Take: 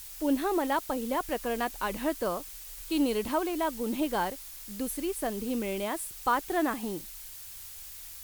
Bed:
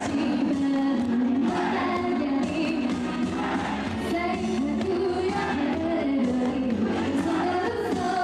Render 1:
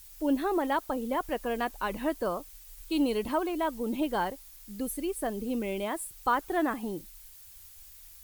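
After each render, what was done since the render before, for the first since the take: denoiser 9 dB, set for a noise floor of -45 dBFS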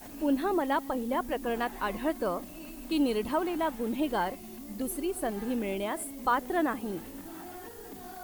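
add bed -19.5 dB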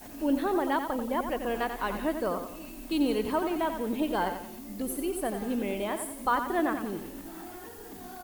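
feedback echo 89 ms, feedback 41%, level -8 dB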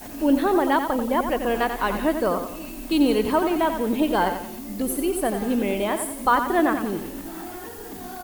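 gain +7.5 dB

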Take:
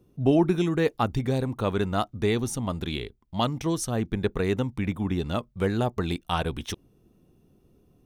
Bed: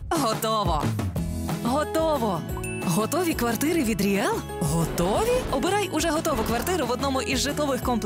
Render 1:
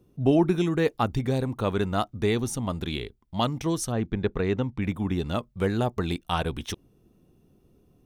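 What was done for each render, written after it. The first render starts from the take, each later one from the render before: 3.92–4.82 air absorption 120 m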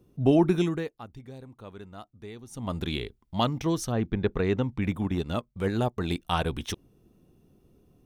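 0.62–2.77 dip -18 dB, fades 0.28 s; 3.43–4.35 bell 9300 Hz -7.5 dB; 5.01–6.11 transient shaper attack -5 dB, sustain -9 dB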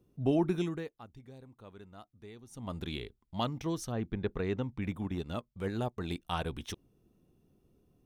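gain -7.5 dB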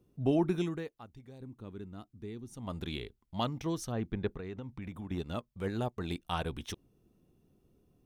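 1.4–2.54 resonant low shelf 440 Hz +7.5 dB, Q 1.5; 4.32–5.09 compressor 4:1, threshold -38 dBFS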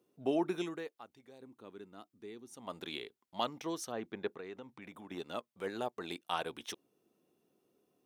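HPF 370 Hz 12 dB/oct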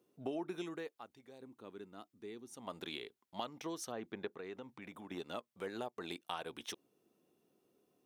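compressor 3:1, threshold -39 dBFS, peak gain reduction 9.5 dB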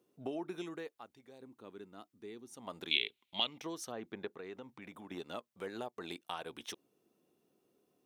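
2.91–3.58 band shelf 2900 Hz +16 dB 1.1 oct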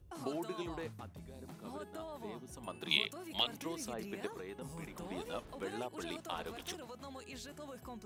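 add bed -24 dB

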